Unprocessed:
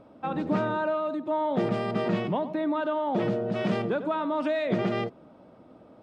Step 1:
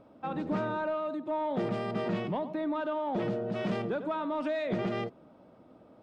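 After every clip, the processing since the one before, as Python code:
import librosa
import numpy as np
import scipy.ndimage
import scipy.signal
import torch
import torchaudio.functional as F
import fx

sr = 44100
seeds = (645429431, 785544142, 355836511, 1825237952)

y = 10.0 ** (-16.5 / 20.0) * np.tanh(x / 10.0 ** (-16.5 / 20.0))
y = y * librosa.db_to_amplitude(-4.0)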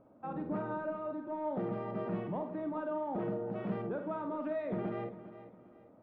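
y = scipy.signal.sosfilt(scipy.signal.butter(2, 1500.0, 'lowpass', fs=sr, output='sos'), x)
y = fx.doubler(y, sr, ms=49.0, db=-7.5)
y = fx.echo_feedback(y, sr, ms=403, feedback_pct=35, wet_db=-14.0)
y = y * librosa.db_to_amplitude(-5.5)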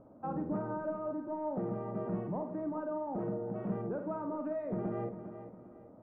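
y = scipy.signal.sosfilt(scipy.signal.butter(2, 1300.0, 'lowpass', fs=sr, output='sos'), x)
y = fx.low_shelf(y, sr, hz=120.0, db=5.0)
y = fx.rider(y, sr, range_db=10, speed_s=0.5)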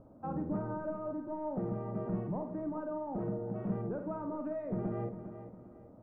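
y = fx.low_shelf(x, sr, hz=110.0, db=12.0)
y = y * librosa.db_to_amplitude(-2.0)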